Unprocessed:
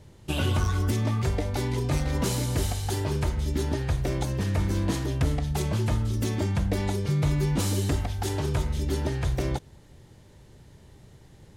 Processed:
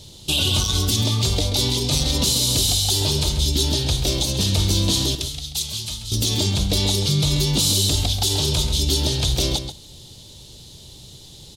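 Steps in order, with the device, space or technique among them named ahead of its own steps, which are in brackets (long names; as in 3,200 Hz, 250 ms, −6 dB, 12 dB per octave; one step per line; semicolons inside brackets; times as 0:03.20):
0:05.15–0:06.12: guitar amp tone stack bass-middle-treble 5-5-5
over-bright horn tweeter (high shelf with overshoot 2,600 Hz +12.5 dB, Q 3; brickwall limiter −15 dBFS, peak gain reduction 9 dB)
slap from a distant wall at 23 metres, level −9 dB
level +5 dB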